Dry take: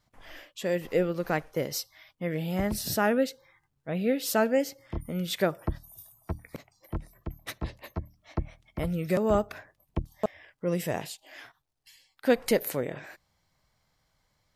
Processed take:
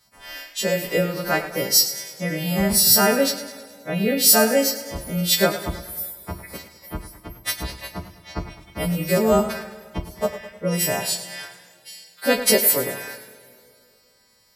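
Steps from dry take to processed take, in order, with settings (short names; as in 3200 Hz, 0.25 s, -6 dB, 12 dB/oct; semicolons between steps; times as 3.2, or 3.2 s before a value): frequency quantiser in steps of 2 st; low shelf 68 Hz -6.5 dB; two-slope reverb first 0.25 s, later 2.8 s, from -22 dB, DRR 6 dB; warbling echo 0.104 s, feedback 52%, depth 54 cents, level -13 dB; gain +6 dB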